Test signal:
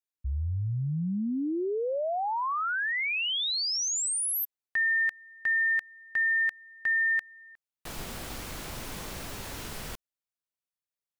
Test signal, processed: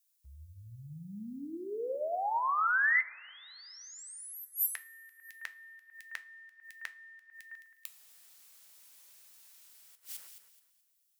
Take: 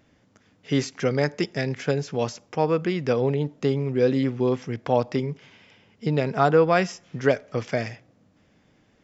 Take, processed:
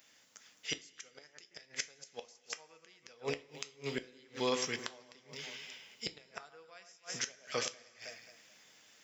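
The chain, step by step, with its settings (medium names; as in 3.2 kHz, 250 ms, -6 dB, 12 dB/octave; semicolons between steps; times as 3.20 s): differentiator; echo whose repeats swap between lows and highs 107 ms, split 2.1 kHz, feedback 53%, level -10 dB; in parallel at 0 dB: gain riding within 4 dB 2 s; on the sum: inverted gate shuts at -28 dBFS, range -32 dB; two-slope reverb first 0.26 s, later 2.4 s, from -21 dB, DRR 9.5 dB; trim +7 dB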